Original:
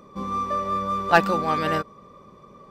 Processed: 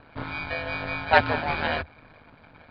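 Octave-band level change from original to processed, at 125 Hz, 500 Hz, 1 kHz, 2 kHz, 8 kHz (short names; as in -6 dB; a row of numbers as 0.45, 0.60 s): -1.0 dB, -2.5 dB, -4.5 dB, +2.0 dB, under -25 dB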